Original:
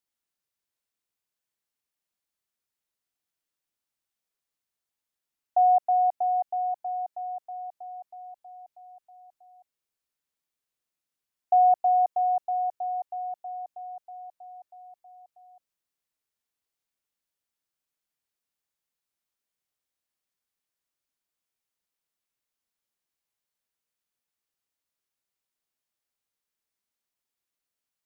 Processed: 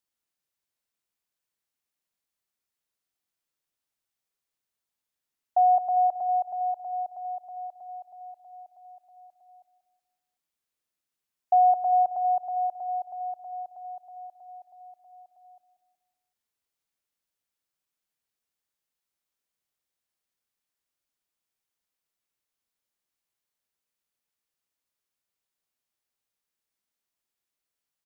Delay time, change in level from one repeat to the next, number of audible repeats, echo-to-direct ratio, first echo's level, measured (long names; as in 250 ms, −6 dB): 187 ms, −7.0 dB, 3, −13.0 dB, −14.0 dB